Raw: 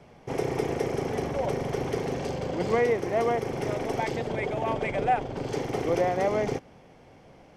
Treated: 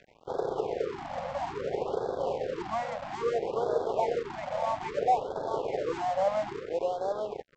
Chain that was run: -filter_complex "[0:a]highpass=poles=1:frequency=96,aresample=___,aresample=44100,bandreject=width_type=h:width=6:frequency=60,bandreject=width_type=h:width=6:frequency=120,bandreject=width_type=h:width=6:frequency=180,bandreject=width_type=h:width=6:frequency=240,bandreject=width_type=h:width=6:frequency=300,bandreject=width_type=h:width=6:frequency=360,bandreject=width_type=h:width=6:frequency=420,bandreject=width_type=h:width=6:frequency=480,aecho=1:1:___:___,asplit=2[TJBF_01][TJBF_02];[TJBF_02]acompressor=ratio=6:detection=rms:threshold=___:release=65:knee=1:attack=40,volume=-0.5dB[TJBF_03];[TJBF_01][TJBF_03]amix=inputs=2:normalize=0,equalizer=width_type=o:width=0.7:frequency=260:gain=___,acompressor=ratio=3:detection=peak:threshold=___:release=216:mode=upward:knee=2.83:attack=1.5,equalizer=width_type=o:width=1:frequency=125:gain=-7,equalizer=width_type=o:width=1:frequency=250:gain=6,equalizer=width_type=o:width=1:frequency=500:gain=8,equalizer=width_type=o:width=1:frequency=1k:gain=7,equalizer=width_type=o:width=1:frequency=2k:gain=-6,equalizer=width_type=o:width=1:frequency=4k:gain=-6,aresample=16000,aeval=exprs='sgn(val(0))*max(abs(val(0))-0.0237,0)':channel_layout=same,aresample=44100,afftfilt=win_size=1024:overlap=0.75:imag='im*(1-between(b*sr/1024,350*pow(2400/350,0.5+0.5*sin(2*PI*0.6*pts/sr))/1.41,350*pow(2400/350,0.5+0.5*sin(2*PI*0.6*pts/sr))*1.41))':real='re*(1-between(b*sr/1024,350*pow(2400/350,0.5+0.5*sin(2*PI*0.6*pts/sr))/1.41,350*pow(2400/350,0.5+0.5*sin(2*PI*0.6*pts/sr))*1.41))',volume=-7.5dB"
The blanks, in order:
11025, 837, 0.531, -38dB, -14, -33dB